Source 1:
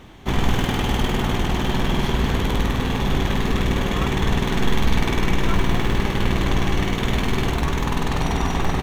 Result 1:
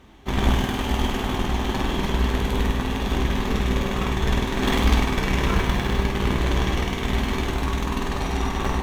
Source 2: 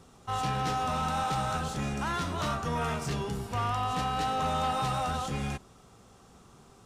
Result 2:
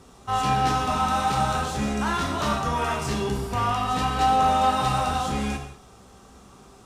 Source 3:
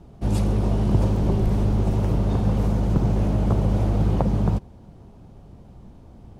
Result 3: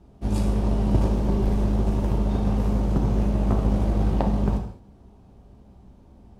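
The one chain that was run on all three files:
harmonic generator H 3 −11 dB, 5 −44 dB, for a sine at −4 dBFS
soft clipping −17 dBFS
reverb whose tail is shaped and stops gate 240 ms falling, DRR 2 dB
loudness normalisation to −24 LKFS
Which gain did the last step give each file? +7.0, +19.0, +8.0 decibels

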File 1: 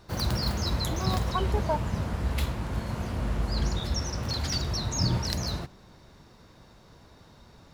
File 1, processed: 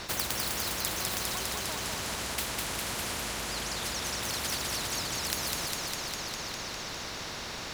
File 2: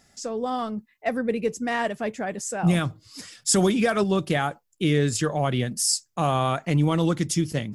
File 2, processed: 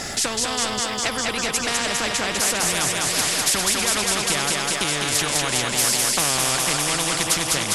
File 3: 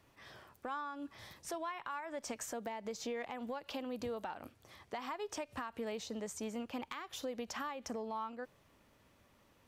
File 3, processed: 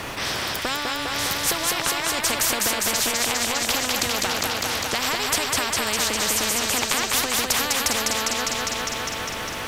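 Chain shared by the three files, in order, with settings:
high-shelf EQ 9,300 Hz −6 dB
downward compressor 5 to 1, threshold −32 dBFS
on a send: feedback echo with a high-pass in the loop 202 ms, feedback 69%, high-pass 230 Hz, level −5 dB
on the sum: every bin compressed towards the loudest bin 4 to 1
normalise the peak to −6 dBFS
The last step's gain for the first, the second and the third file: +13.0, +12.0, +21.5 decibels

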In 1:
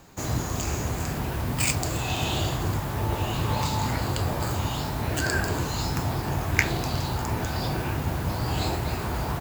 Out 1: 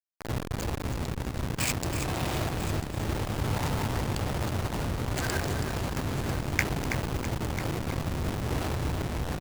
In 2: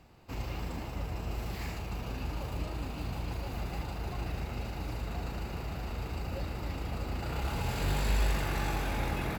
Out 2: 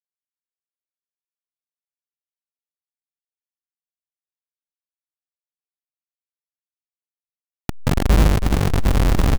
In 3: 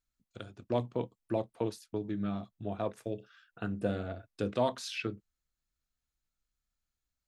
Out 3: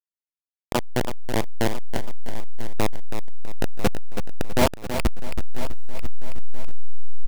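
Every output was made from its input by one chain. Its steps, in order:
hold until the input has moved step −21 dBFS
single-tap delay 995 ms −13.5 dB
feedback echo at a low word length 326 ms, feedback 35%, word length 7 bits, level −7.5 dB
normalise the peak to −6 dBFS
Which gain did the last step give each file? −4.5, +12.5, +10.5 decibels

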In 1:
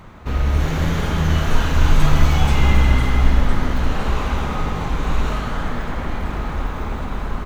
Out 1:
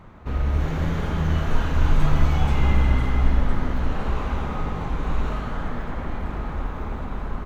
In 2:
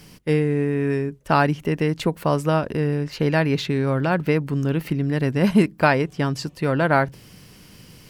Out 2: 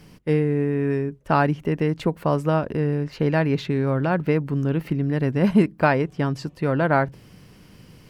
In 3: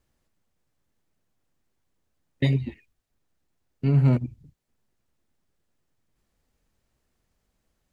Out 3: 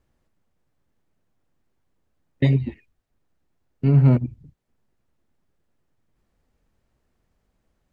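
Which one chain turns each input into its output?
high-shelf EQ 2,800 Hz −9.5 dB
normalise the peak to −6 dBFS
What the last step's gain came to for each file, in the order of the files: −4.0, −0.5, +4.0 decibels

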